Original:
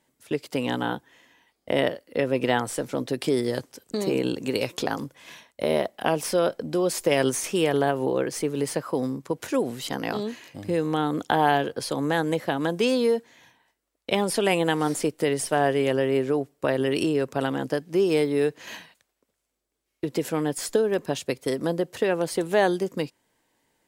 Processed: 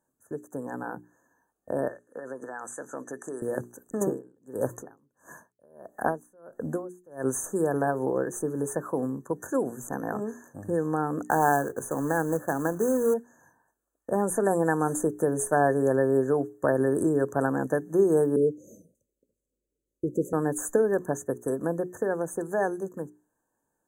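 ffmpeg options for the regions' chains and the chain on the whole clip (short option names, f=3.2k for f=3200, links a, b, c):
-filter_complex "[0:a]asettb=1/sr,asplit=3[a][b][c];[a]atrim=end=1.884[d];[b]atrim=start=1.88:end=3.42,asetpts=PTS-STARTPTS,afade=t=in:d=0.004:c=qsin,afade=t=out:st=1.536:d=0.004:c=qsin,tiltshelf=f=1.1k:g=-8.5,acompressor=threshold=-26dB:ratio=10:attack=3.2:release=140:knee=1:detection=peak,highpass=190,lowpass=6k[e];[c]atrim=start=3.416[f];[d][e]acrossfade=d=0.004:c1=hsin:c2=qsin[g];[g][f]acrossfade=d=0.004:c1=qsin:c2=hsin,asettb=1/sr,asplit=3[h][i][j];[h]atrim=end=4.014[k];[i]atrim=start=4.01:end=7.25,asetpts=PTS-STARTPTS,afade=t=in:d=0.004:c=qsin,afade=t=out:st=3.236:d=0.004:c=qsin,acontrast=31,aeval=exprs='val(0)*pow(10,-37*(0.5-0.5*cos(2*PI*1.5*n/s))/20)':c=same[l];[j]atrim=start=7.246[m];[k][l]acrossfade=d=0.004:c1=hsin:c2=qsin[n];[n][m]acrossfade=d=0.004:c1=qsin:c2=hsin,asettb=1/sr,asplit=3[o][p][q];[o]atrim=end=11.264[r];[p]atrim=start=11.26:end=13.14,asetpts=PTS-STARTPTS,afade=t=in:d=0.004:c=qsin,afade=t=out:st=1.876:d=0.004:c=qsin,bandreject=f=60:t=h:w=6,bandreject=f=120:t=h:w=6,bandreject=f=180:t=h:w=6,acrusher=bits=3:mode=log:mix=0:aa=0.000001[s];[q]atrim=start=13.136[t];[r][s]acrossfade=d=0.004:c1=hsin:c2=qsin[u];[u][t]acrossfade=d=0.004:c1=qsin:c2=hsin,asettb=1/sr,asplit=3[v][w][x];[v]atrim=end=18.364[y];[w]atrim=start=18.36:end=20.33,asetpts=PTS-STARTPTS,afade=t=in:d=0.004:c=qsin,afade=t=out:st=1.966:d=0.004:c=qsin,asuperstop=centerf=1300:order=20:qfactor=0.56,highshelf=f=3.1k:g=-11[z];[x]atrim=start=20.326[aa];[y][z]acrossfade=d=0.004:c1=hsin:c2=qsin[ab];[ab][aa]acrossfade=d=0.004:c1=qsin:c2=hsin,afftfilt=real='re*(1-between(b*sr/4096,1800,6000))':imag='im*(1-between(b*sr/4096,1800,6000))':win_size=4096:overlap=0.75,bandreject=f=60:t=h:w=6,bandreject=f=120:t=h:w=6,bandreject=f=180:t=h:w=6,bandreject=f=240:t=h:w=6,bandreject=f=300:t=h:w=6,bandreject=f=360:t=h:w=6,bandreject=f=420:t=h:w=6,dynaudnorm=f=410:g=13:m=11.5dB,volume=-7.5dB"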